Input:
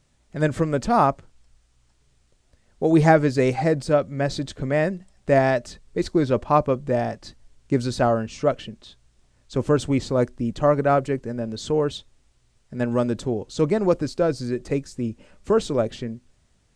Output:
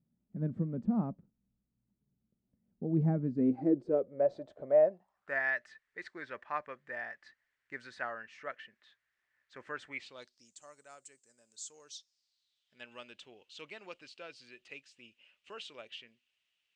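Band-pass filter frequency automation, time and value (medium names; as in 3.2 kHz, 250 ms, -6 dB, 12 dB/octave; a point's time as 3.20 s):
band-pass filter, Q 5.4
3.26 s 200 Hz
4.34 s 620 Hz
4.88 s 620 Hz
5.40 s 1.8 kHz
9.89 s 1.8 kHz
10.57 s 7.7 kHz
11.57 s 7.7 kHz
12.91 s 2.8 kHz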